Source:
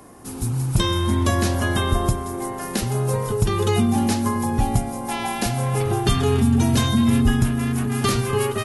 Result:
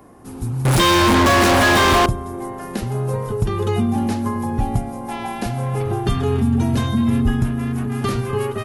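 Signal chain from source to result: peaking EQ 8.1 kHz -9.5 dB 2.8 oct; 0.65–2.06 s: overdrive pedal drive 41 dB, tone 4.9 kHz, clips at -7.5 dBFS

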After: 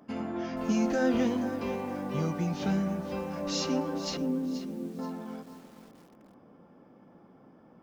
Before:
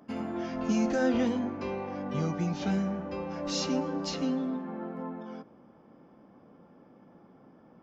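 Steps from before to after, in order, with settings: 4.17–4.99 s: steep low-pass 510 Hz 36 dB/octave; bit-crushed delay 479 ms, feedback 35%, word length 8-bit, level -11 dB

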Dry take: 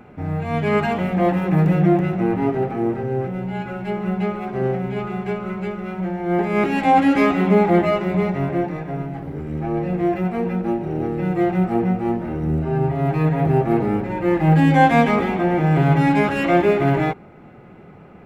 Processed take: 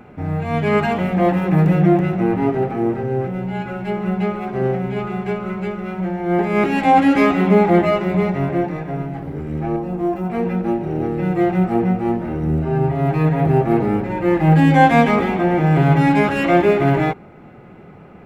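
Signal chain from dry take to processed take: 9.76–10.30 s: graphic EQ 125/250/500/1000/2000/4000 Hz -11/+3/-6/+4/-12/-5 dB; trim +2 dB

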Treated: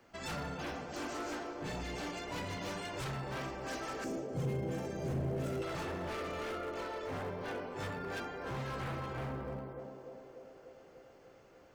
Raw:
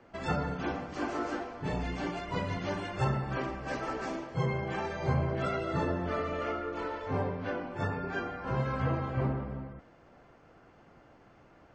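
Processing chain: band-passed feedback delay 296 ms, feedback 75%, band-pass 490 Hz, level -4.5 dB; in parallel at -4 dB: hard clipper -30 dBFS, distortion -10 dB; on the sum: pre-emphasis filter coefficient 0.8; wavefolder -37.5 dBFS; 4.04–5.62 s: graphic EQ 125/250/500/1000/2000/4000 Hz +5/+6/+5/-8/-6/-9 dB; trim +3 dB

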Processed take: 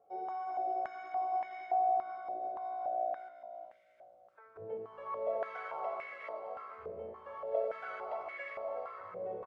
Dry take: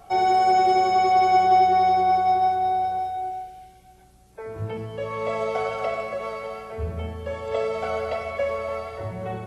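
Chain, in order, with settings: 3.28–4.56 s: compression 6:1, threshold -40 dBFS, peak gain reduction 10 dB; on a send: frequency-shifting echo 363 ms, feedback 35%, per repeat -59 Hz, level -9.5 dB; on the sum: gain riding within 4 dB 0.5 s; step-sequenced band-pass 3.5 Hz 510–1900 Hz; trim -7 dB

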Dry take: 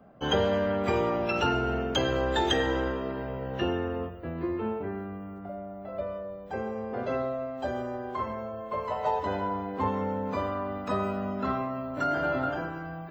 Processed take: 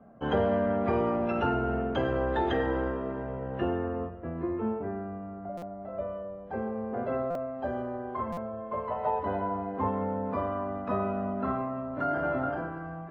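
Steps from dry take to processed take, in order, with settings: low-pass 1.6 kHz 12 dB/octave; feedback comb 230 Hz, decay 0.27 s, harmonics odd, mix 70%; buffer glitch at 5.57/7.30/8.32 s, samples 256, times 8; trim +9 dB

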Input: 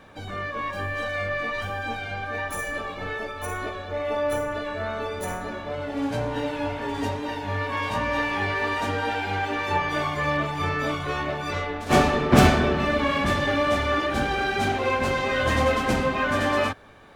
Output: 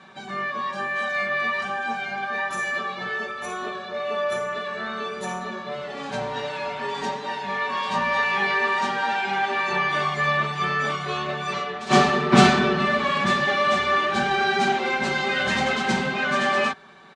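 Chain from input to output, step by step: cabinet simulation 150–8000 Hz, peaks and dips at 310 Hz -5 dB, 540 Hz -9 dB, 4 kHz +4 dB; comb 5.2 ms, depth 94%

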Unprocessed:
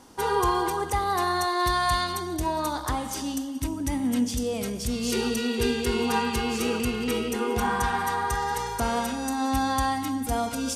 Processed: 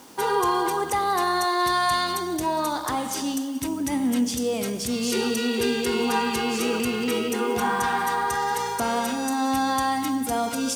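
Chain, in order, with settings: high-pass 170 Hz 12 dB/octave; in parallel at -1 dB: peak limiter -22 dBFS, peak gain reduction 9.5 dB; on the sum: word length cut 8-bit, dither none; trim -1.5 dB

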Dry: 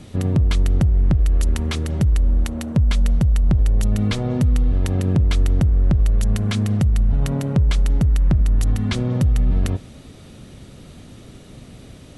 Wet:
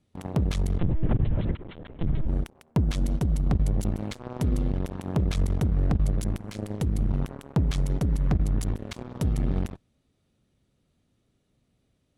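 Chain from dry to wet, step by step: Chebyshev shaper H 3 -9 dB, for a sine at -9.5 dBFS; 0.79–2.28 s: LPC vocoder at 8 kHz pitch kept; trim -5.5 dB

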